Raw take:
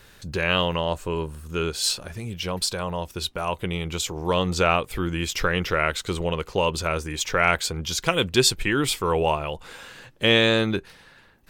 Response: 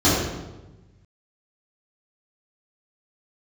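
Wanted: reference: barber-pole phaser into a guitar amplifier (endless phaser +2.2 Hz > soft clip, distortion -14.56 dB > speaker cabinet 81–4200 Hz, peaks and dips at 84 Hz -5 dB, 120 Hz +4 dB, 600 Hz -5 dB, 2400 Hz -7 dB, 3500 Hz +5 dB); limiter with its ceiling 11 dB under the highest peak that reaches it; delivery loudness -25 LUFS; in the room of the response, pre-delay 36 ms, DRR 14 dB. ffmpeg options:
-filter_complex "[0:a]alimiter=limit=-15.5dB:level=0:latency=1,asplit=2[a][b];[1:a]atrim=start_sample=2205,adelay=36[c];[b][c]afir=irnorm=-1:irlink=0,volume=-35.5dB[d];[a][d]amix=inputs=2:normalize=0,asplit=2[e][f];[f]afreqshift=2.2[g];[e][g]amix=inputs=2:normalize=1,asoftclip=threshold=-24dB,highpass=81,equalizer=f=84:t=q:w=4:g=-5,equalizer=f=120:t=q:w=4:g=4,equalizer=f=600:t=q:w=4:g=-5,equalizer=f=2.4k:t=q:w=4:g=-7,equalizer=f=3.5k:t=q:w=4:g=5,lowpass=f=4.2k:w=0.5412,lowpass=f=4.2k:w=1.3066,volume=9dB"

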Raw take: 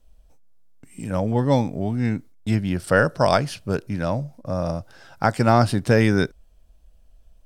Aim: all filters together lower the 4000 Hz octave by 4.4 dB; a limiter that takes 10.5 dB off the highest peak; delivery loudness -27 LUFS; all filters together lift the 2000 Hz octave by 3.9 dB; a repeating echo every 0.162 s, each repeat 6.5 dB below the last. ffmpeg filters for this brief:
-af "equalizer=f=2k:t=o:g=7,equalizer=f=4k:t=o:g=-8,alimiter=limit=-12dB:level=0:latency=1,aecho=1:1:162|324|486|648|810|972:0.473|0.222|0.105|0.0491|0.0231|0.0109,volume=-2.5dB"

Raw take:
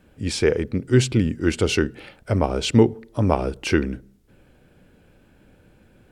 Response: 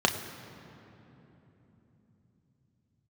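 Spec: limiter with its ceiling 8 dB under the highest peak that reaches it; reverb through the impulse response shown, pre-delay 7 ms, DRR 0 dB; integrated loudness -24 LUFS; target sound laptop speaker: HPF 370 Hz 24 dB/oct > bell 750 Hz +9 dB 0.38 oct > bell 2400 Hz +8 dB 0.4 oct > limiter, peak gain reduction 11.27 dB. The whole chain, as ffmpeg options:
-filter_complex "[0:a]alimiter=limit=-10.5dB:level=0:latency=1,asplit=2[a][b];[1:a]atrim=start_sample=2205,adelay=7[c];[b][c]afir=irnorm=-1:irlink=0,volume=-13.5dB[d];[a][d]amix=inputs=2:normalize=0,highpass=f=370:w=0.5412,highpass=f=370:w=1.3066,equalizer=f=750:t=o:w=0.38:g=9,equalizer=f=2.4k:t=o:w=0.4:g=8,volume=4.5dB,alimiter=limit=-14dB:level=0:latency=1"

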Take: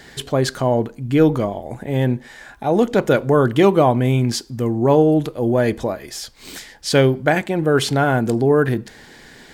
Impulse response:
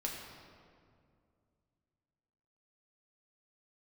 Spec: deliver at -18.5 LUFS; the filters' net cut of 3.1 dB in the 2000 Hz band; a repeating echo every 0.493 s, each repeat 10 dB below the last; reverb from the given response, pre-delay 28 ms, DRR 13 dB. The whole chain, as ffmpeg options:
-filter_complex "[0:a]equalizer=f=2k:t=o:g=-4.5,aecho=1:1:493|986|1479|1972:0.316|0.101|0.0324|0.0104,asplit=2[a][b];[1:a]atrim=start_sample=2205,adelay=28[c];[b][c]afir=irnorm=-1:irlink=0,volume=-14.5dB[d];[a][d]amix=inputs=2:normalize=0,volume=-0.5dB"

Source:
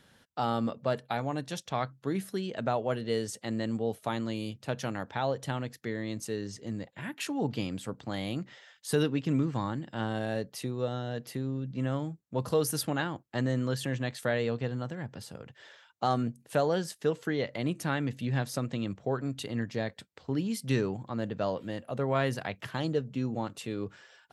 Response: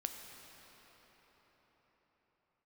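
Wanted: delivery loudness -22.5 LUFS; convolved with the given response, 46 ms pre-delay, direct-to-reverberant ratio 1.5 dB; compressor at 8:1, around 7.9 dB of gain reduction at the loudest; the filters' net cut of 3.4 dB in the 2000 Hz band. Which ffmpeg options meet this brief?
-filter_complex "[0:a]equalizer=f=2k:t=o:g=-4.5,acompressor=threshold=-30dB:ratio=8,asplit=2[a][b];[1:a]atrim=start_sample=2205,adelay=46[c];[b][c]afir=irnorm=-1:irlink=0,volume=-1dB[d];[a][d]amix=inputs=2:normalize=0,volume=12.5dB"

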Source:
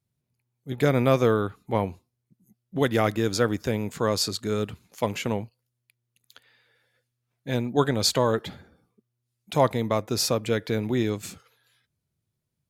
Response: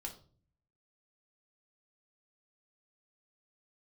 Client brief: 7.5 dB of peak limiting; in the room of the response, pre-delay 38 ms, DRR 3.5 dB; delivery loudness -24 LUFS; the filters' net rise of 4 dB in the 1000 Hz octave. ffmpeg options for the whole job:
-filter_complex "[0:a]equalizer=f=1k:t=o:g=5,alimiter=limit=-12.5dB:level=0:latency=1,asplit=2[a][b];[1:a]atrim=start_sample=2205,adelay=38[c];[b][c]afir=irnorm=-1:irlink=0,volume=-1dB[d];[a][d]amix=inputs=2:normalize=0,volume=1dB"

